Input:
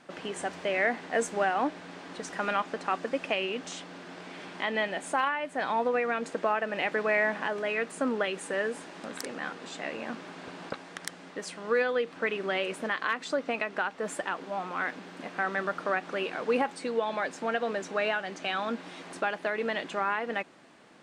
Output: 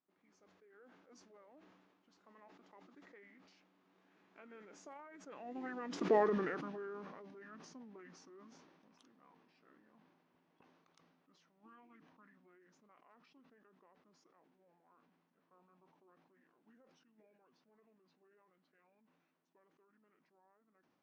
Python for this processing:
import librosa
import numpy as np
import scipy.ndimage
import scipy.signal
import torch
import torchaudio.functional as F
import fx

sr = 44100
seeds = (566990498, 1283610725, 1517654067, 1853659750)

y = fx.doppler_pass(x, sr, speed_mps=18, closest_m=1.5, pass_at_s=6.15)
y = fx.dynamic_eq(y, sr, hz=1300.0, q=0.79, threshold_db=-57.0, ratio=4.0, max_db=-3)
y = fx.formant_shift(y, sr, semitones=-6)
y = fx.sustainer(y, sr, db_per_s=35.0)